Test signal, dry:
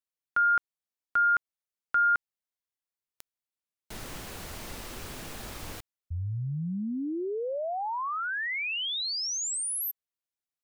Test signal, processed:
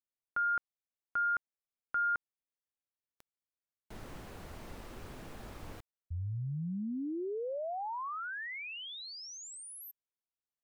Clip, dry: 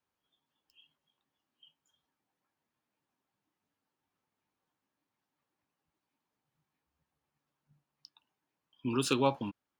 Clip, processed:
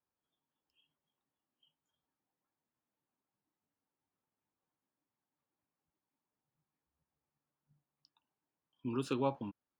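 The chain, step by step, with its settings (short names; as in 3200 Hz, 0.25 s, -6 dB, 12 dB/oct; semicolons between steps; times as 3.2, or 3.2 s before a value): high shelf 2300 Hz -12 dB; gain -4.5 dB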